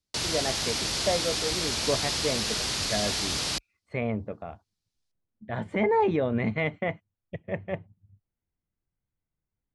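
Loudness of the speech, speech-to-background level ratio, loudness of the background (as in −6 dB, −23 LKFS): −30.5 LKFS, −3.0 dB, −27.5 LKFS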